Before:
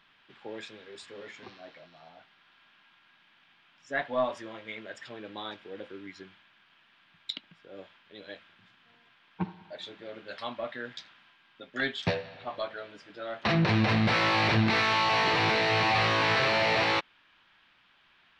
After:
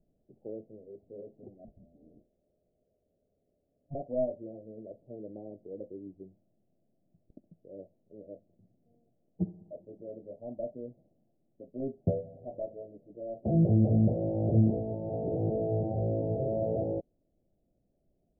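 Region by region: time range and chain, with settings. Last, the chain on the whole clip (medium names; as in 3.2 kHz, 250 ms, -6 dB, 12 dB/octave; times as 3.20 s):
1.64–3.95 s: ring modulator 420 Hz + high-order bell 1.3 kHz -8.5 dB 1 oct
whole clip: steep low-pass 660 Hz 72 dB/octave; bass shelf 76 Hz +9.5 dB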